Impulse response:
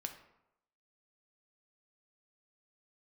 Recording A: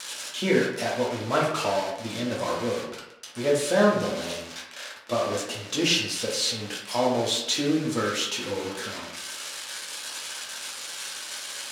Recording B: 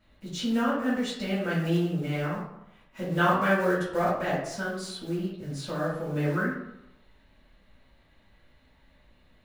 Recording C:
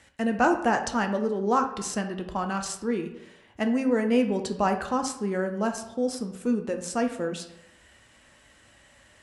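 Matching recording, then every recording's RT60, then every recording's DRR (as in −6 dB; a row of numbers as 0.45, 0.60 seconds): C; 0.85, 0.85, 0.85 seconds; −5.0, −9.5, 4.5 decibels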